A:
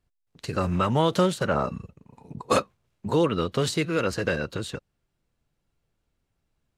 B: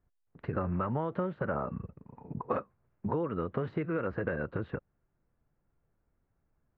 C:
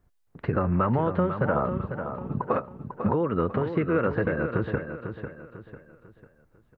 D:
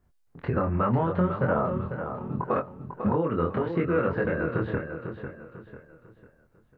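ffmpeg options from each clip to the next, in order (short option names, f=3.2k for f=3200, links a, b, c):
-af "lowpass=f=1.8k:w=0.5412,lowpass=f=1.8k:w=1.3066,acompressor=threshold=-29dB:ratio=6"
-filter_complex "[0:a]alimiter=limit=-22dB:level=0:latency=1:release=325,asplit=2[a][b];[b]aecho=0:1:497|994|1491|1988:0.376|0.143|0.0543|0.0206[c];[a][c]amix=inputs=2:normalize=0,volume=9dB"
-af "flanger=delay=22.5:depth=2.6:speed=0.74,volume=2.5dB"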